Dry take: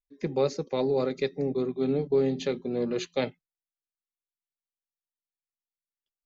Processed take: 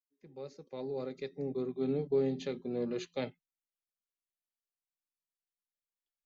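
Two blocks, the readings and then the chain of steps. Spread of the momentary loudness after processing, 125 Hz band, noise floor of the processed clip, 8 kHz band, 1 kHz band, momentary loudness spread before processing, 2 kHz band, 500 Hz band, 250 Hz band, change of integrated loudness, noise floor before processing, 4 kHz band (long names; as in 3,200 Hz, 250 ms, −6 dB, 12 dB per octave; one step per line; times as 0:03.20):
16 LU, −8.0 dB, below −85 dBFS, can't be measured, −11.5 dB, 6 LU, −10.0 dB, −8.0 dB, −7.0 dB, −7.5 dB, below −85 dBFS, −10.5 dB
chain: fade in at the beginning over 1.87 s
harmonic and percussive parts rebalanced percussive −4 dB
level −5.5 dB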